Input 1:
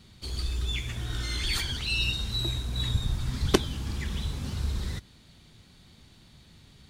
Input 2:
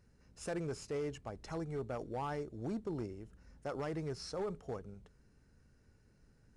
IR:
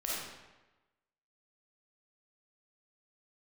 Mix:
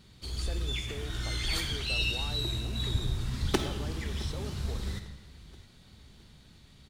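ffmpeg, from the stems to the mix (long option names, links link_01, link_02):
-filter_complex "[0:a]asoftclip=type=hard:threshold=-14dB,volume=-5.5dB,asplit=3[link_01][link_02][link_03];[link_02]volume=-7.5dB[link_04];[link_03]volume=-17.5dB[link_05];[1:a]acompressor=threshold=-44dB:ratio=6,volume=2.5dB[link_06];[2:a]atrim=start_sample=2205[link_07];[link_04][link_07]afir=irnorm=-1:irlink=0[link_08];[link_05]aecho=0:1:664|1328|1992|2656|3320|3984:1|0.44|0.194|0.0852|0.0375|0.0165[link_09];[link_01][link_06][link_08][link_09]amix=inputs=4:normalize=0"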